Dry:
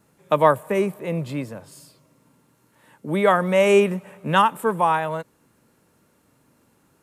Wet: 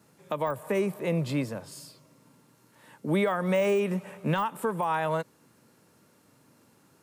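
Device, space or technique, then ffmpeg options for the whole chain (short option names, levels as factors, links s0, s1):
broadcast voice chain: -af "highpass=f=87:w=0.5412,highpass=f=87:w=1.3066,deesser=0.7,acompressor=threshold=0.0891:ratio=4,equalizer=f=5000:t=o:w=0.76:g=4,alimiter=limit=0.133:level=0:latency=1:release=194"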